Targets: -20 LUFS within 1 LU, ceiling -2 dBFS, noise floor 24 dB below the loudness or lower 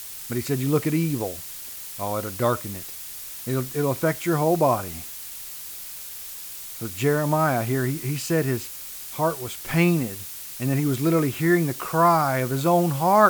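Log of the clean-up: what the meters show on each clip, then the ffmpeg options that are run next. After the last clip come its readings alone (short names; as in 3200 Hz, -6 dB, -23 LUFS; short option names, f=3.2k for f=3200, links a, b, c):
noise floor -37 dBFS; noise floor target -49 dBFS; loudness -24.5 LUFS; peak -4.0 dBFS; loudness target -20.0 LUFS
-> -af "afftdn=nr=12:nf=-37"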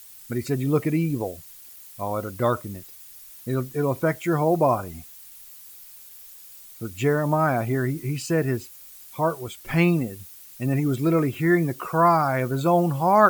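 noise floor -46 dBFS; noise floor target -48 dBFS
-> -af "afftdn=nr=6:nf=-46"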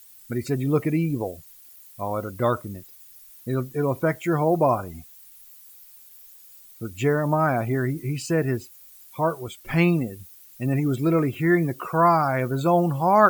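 noise floor -49 dBFS; loudness -24.0 LUFS; peak -4.0 dBFS; loudness target -20.0 LUFS
-> -af "volume=4dB,alimiter=limit=-2dB:level=0:latency=1"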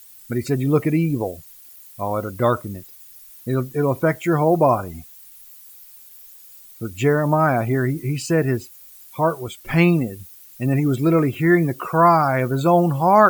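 loudness -20.0 LUFS; peak -2.0 dBFS; noise floor -45 dBFS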